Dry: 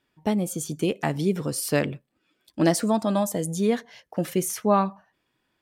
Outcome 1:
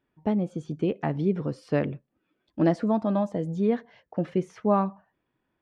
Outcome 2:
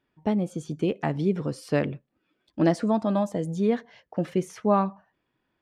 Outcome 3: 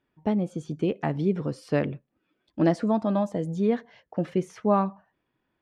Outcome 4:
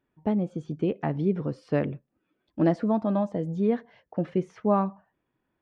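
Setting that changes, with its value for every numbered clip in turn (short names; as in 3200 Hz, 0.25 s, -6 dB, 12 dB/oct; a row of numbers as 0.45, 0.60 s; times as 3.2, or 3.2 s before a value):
tape spacing loss, at 10 kHz: 37, 21, 29, 46 dB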